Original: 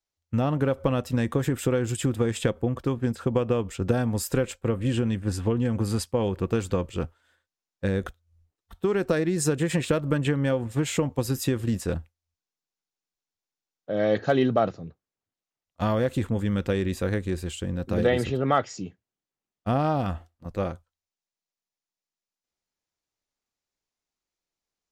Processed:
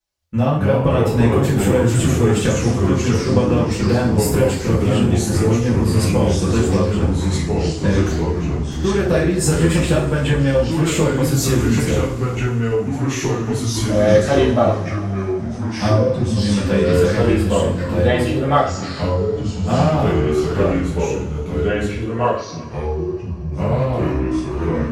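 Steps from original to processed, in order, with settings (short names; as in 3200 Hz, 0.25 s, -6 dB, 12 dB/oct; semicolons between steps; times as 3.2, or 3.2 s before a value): 15.88–16.37 spectral contrast raised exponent 2.2; two-slope reverb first 0.4 s, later 3.6 s, from -22 dB, DRR -8 dB; echoes that change speed 0.182 s, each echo -3 st, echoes 3; gain -1 dB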